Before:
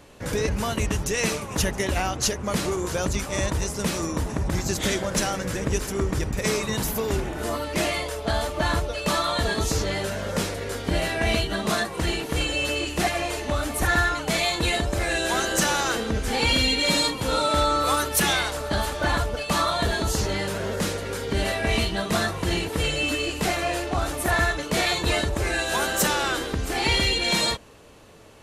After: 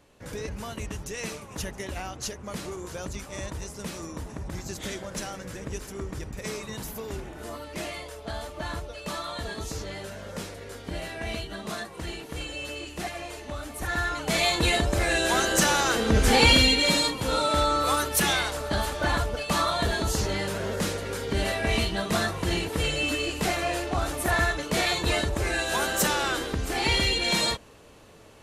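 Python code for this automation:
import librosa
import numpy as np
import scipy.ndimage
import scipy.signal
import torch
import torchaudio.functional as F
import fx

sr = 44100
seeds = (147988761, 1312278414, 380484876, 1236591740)

y = fx.gain(x, sr, db=fx.line((13.78, -10.0), (14.45, 0.5), (15.95, 0.5), (16.24, 7.0), (17.01, -2.0)))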